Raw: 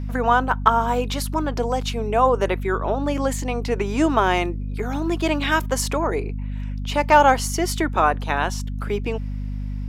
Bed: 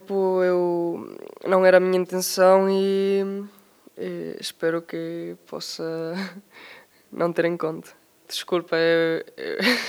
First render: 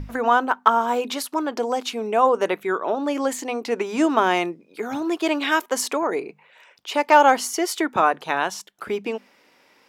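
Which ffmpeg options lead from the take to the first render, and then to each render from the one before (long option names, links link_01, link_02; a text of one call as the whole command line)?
ffmpeg -i in.wav -af "bandreject=frequency=50:width_type=h:width=6,bandreject=frequency=100:width_type=h:width=6,bandreject=frequency=150:width_type=h:width=6,bandreject=frequency=200:width_type=h:width=6,bandreject=frequency=250:width_type=h:width=6" out.wav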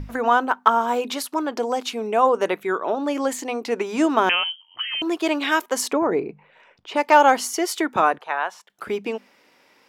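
ffmpeg -i in.wav -filter_complex "[0:a]asettb=1/sr,asplit=3[link_01][link_02][link_03];[link_01]atrim=end=4.294[link_04];[link_02]atrim=start=4.29:end=5.02,asetpts=PTS-STARTPTS,afade=type=in:duration=0.004:curve=qsin,afade=type=out:start_time=0.726:duration=0.004:curve=qsin,lowpass=frequency=2900:width_type=q:width=0.5098,lowpass=frequency=2900:width_type=q:width=0.6013,lowpass=frequency=2900:width_type=q:width=0.9,lowpass=frequency=2900:width_type=q:width=2.563,afreqshift=-3400[link_05];[link_03]atrim=start=5.016[link_06];[link_04][link_05]acrossfade=duration=0.004:curve1=hsin:curve2=qsin[link_07];[link_07][link_06]acrossfade=duration=0.004:curve1=qsin:curve2=hsin,asplit=3[link_08][link_09][link_10];[link_08]afade=type=out:start_time=5.91:duration=0.02[link_11];[link_09]aemphasis=mode=reproduction:type=riaa,afade=type=in:start_time=5.91:duration=0.02,afade=type=out:start_time=6.95:duration=0.02[link_12];[link_10]afade=type=in:start_time=6.95:duration=0.02[link_13];[link_11][link_12][link_13]amix=inputs=3:normalize=0,asettb=1/sr,asplit=3[link_14][link_15][link_16];[link_14]atrim=end=8.184[link_17];[link_15]atrim=start=8.18:end=8.7,asetpts=PTS-STARTPTS,afade=type=in:duration=0.004:curve=qsin,afade=type=out:start_time=0.516:duration=0.004:curve=qsin,acrossover=split=500 2400:gain=0.0708 1 0.2[link_18][link_19][link_20];[link_18][link_19][link_20]amix=inputs=3:normalize=0[link_21];[link_16]atrim=start=8.696[link_22];[link_17][link_21]acrossfade=duration=0.004:curve1=hsin:curve2=qsin[link_23];[link_23][link_22]acrossfade=duration=0.004:curve1=qsin:curve2=hsin" out.wav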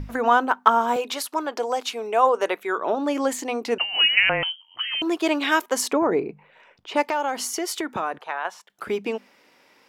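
ffmpeg -i in.wav -filter_complex "[0:a]asettb=1/sr,asplit=3[link_01][link_02][link_03];[link_01]atrim=end=0.964[link_04];[link_02]atrim=start=0.96:end=2.78,asetpts=PTS-STARTPTS,afade=type=in:duration=0.004:curve=qsin,afade=type=out:start_time=1.816:duration=0.004:curve=qsin,highpass=400[link_05];[link_03]atrim=start=2.776[link_06];[link_04][link_05]acrossfade=duration=0.004:curve1=hsin:curve2=qsin[link_07];[link_07][link_06]acrossfade=duration=0.004:curve1=qsin:curve2=hsin,asettb=1/sr,asplit=3[link_08][link_09][link_10];[link_08]atrim=end=3.784[link_11];[link_09]atrim=start=3.78:end=4.43,asetpts=PTS-STARTPTS,afade=type=in:duration=0.004:curve=qsin,afade=type=out:start_time=0.646:duration=0.004:curve=qsin,lowpass=frequency=2700:width_type=q:width=0.5098,lowpass=frequency=2700:width_type=q:width=0.6013,lowpass=frequency=2700:width_type=q:width=0.9,lowpass=frequency=2700:width_type=q:width=2.563,afreqshift=-3200[link_12];[link_10]atrim=start=4.426[link_13];[link_11][link_12]acrossfade=duration=0.004:curve1=hsin:curve2=qsin[link_14];[link_14][link_13]acrossfade=duration=0.004:curve1=qsin:curve2=hsin,asettb=1/sr,asplit=3[link_15][link_16][link_17];[link_15]atrim=end=7.074[link_18];[link_16]atrim=start=7.07:end=8.45,asetpts=PTS-STARTPTS,afade=type=in:duration=0.004:curve=qsin,afade=type=out:start_time=1.376:duration=0.004:curve=qsin,acompressor=threshold=-24dB:ratio=3:attack=3.2:release=140:knee=1:detection=peak[link_19];[link_17]atrim=start=8.446[link_20];[link_18][link_19]acrossfade=duration=0.004:curve1=hsin:curve2=qsin[link_21];[link_21][link_20]acrossfade=duration=0.004:curve1=qsin:curve2=hsin" out.wav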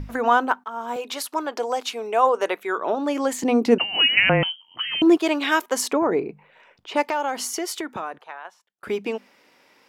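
ffmpeg -i in.wav -filter_complex "[0:a]asettb=1/sr,asplit=3[link_01][link_02][link_03];[link_01]atrim=end=3.434[link_04];[link_02]atrim=start=3.43:end=5.18,asetpts=PTS-STARTPTS,afade=type=in:duration=0.004:curve=qsin,afade=type=out:start_time=1.746:duration=0.004:curve=qsin,equalizer=frequency=200:width_type=o:width=2.3:gain=14[link_05];[link_03]atrim=start=5.176[link_06];[link_04][link_05]acrossfade=duration=0.004:curve1=hsin:curve2=qsin[link_07];[link_07][link_06]acrossfade=duration=0.004:curve1=qsin:curve2=hsin,asplit=3[link_08][link_09][link_10];[link_08]atrim=end=0.64,asetpts=PTS-STARTPTS,afade=type=out:start_time=0.636:duration=0.004:curve=hsin:silence=0.0668344[link_11];[link_09]atrim=start=0.64:end=8.83,asetpts=PTS-STARTPTS,afade=type=in:duration=0.61:silence=0.0668344,afade=type=out:start_time=6.93:duration=1.26[link_12];[link_10]atrim=start=8.83,asetpts=PTS-STARTPTS,afade=type=in:duration=0.004:curve=hsin[link_13];[link_11][link_12][link_13]concat=n=3:v=0:a=1" out.wav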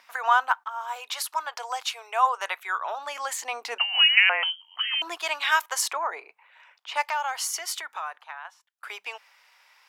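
ffmpeg -i in.wav -af "highpass=frequency=850:width=0.5412,highpass=frequency=850:width=1.3066" out.wav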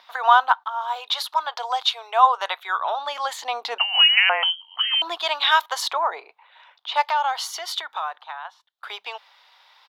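ffmpeg -i in.wav -af "firequalizer=gain_entry='entry(200,0);entry(760,8);entry(1700,1);entry(2500,-1);entry(3600,13);entry(5300,-1);entry(8100,-9);entry(14000,-4)':delay=0.05:min_phase=1" out.wav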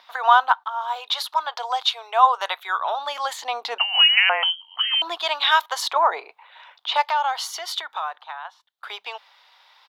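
ffmpeg -i in.wav -filter_complex "[0:a]asettb=1/sr,asplit=3[link_01][link_02][link_03];[link_01]atrim=end=2.284[link_04];[link_02]atrim=start=2.28:end=3.33,asetpts=PTS-STARTPTS,afade=type=in:duration=0.004:curve=qsin,afade=type=out:start_time=1.046:duration=0.004:curve=qsin,highshelf=frequency=8400:gain=6.5[link_05];[link_03]atrim=start=3.326[link_06];[link_04][link_05]acrossfade=duration=0.004:curve1=hsin:curve2=qsin[link_07];[link_07][link_06]acrossfade=duration=0.004:curve1=qsin:curve2=hsin,asplit=3[link_08][link_09][link_10];[link_08]atrim=end=5.962[link_11];[link_09]atrim=start=5.958:end=6.972,asetpts=PTS-STARTPTS,volume=4.5dB[link_12];[link_10]atrim=start=6.968[link_13];[link_11][link_12]acrossfade=duration=0.004:curve1=hsin:curve2=hsin[link_14];[link_14][link_13]acrossfade=duration=0.004:curve1=hsin:curve2=hsin" out.wav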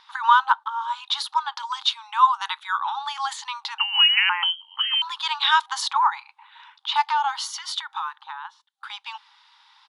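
ffmpeg -i in.wav -af "afftfilt=real='re*between(b*sr/4096,790,11000)':imag='im*between(b*sr/4096,790,11000)':win_size=4096:overlap=0.75,equalizer=frequency=2200:width_type=o:width=0.62:gain=-4" out.wav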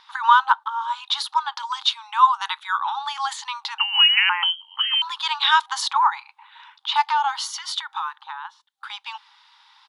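ffmpeg -i in.wav -af "volume=1.5dB" out.wav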